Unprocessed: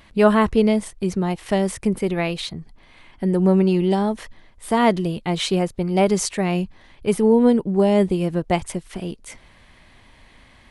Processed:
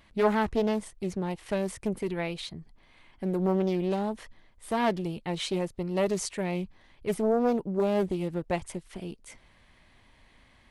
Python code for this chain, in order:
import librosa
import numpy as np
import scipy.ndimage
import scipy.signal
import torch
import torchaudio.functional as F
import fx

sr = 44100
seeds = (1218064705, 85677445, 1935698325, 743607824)

y = fx.doppler_dist(x, sr, depth_ms=0.43)
y = F.gain(torch.from_numpy(y), -9.0).numpy()